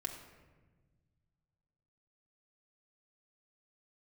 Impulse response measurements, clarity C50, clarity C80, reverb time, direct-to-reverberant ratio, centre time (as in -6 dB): 7.0 dB, 8.5 dB, 1.3 s, 1.0 dB, 30 ms